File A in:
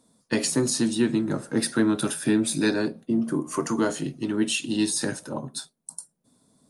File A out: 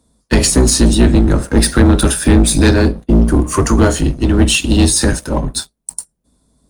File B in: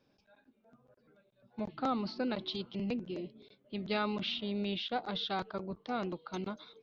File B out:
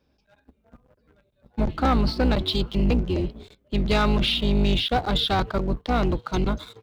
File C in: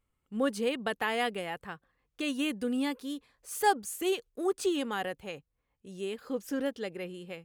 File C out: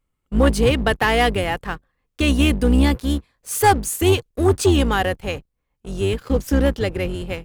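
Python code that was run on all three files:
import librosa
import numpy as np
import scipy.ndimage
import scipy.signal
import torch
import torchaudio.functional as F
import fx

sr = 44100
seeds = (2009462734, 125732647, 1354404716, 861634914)

y = fx.octave_divider(x, sr, octaves=2, level_db=3.0)
y = fx.leveller(y, sr, passes=2)
y = y * 10.0 ** (6.0 / 20.0)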